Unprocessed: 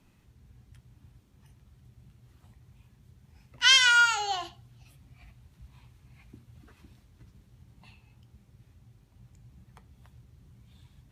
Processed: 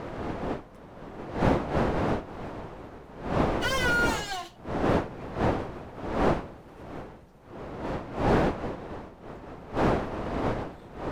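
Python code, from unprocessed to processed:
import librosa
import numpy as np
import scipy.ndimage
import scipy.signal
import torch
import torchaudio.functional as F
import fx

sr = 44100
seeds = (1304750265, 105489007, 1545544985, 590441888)

y = fx.lower_of_two(x, sr, delay_ms=5.5)
y = fx.dmg_wind(y, sr, seeds[0], corner_hz=640.0, level_db=-30.0)
y = fx.slew_limit(y, sr, full_power_hz=97.0)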